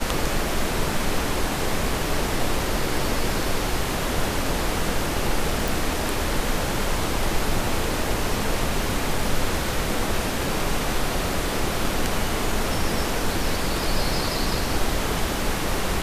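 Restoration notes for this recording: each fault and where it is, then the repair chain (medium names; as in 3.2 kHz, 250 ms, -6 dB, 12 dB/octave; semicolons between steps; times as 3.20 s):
5.68 s: pop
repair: de-click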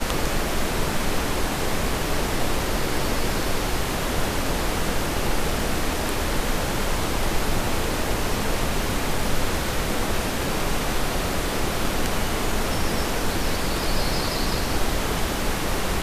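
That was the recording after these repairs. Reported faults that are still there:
nothing left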